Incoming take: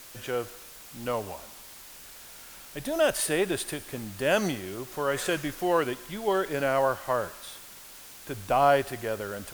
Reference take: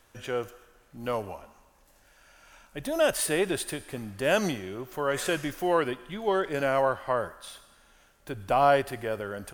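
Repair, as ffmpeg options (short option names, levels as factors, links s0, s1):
-af "afftdn=nr=13:nf=-47"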